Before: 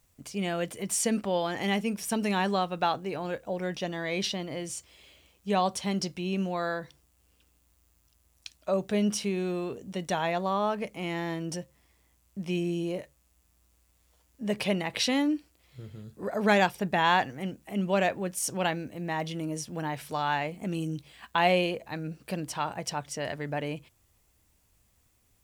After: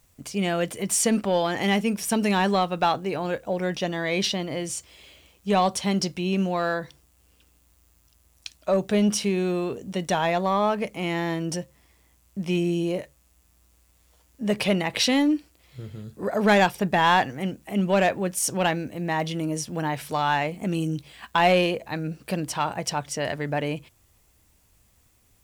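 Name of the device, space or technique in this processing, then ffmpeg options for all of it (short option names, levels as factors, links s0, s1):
parallel distortion: -filter_complex "[0:a]asplit=2[s0][s1];[s1]asoftclip=type=hard:threshold=0.0708,volume=0.631[s2];[s0][s2]amix=inputs=2:normalize=0,volume=1.19"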